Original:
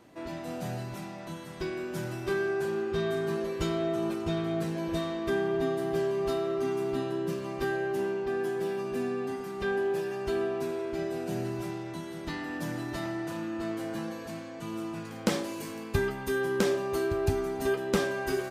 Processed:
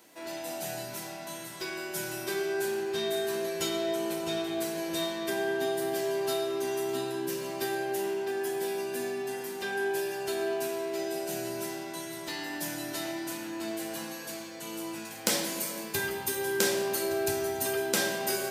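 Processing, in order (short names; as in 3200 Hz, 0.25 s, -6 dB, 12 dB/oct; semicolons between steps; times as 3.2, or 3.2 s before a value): HPF 88 Hz; RIAA curve recording; notch 1200 Hz, Q 9.9; on a send: reverb RT60 1.7 s, pre-delay 13 ms, DRR 3 dB; on the sum: gain -1 dB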